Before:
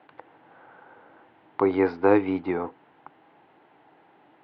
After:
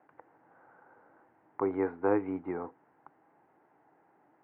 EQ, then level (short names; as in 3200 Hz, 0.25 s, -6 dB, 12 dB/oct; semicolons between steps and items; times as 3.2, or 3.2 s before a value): LPF 1900 Hz 24 dB/oct; -8.5 dB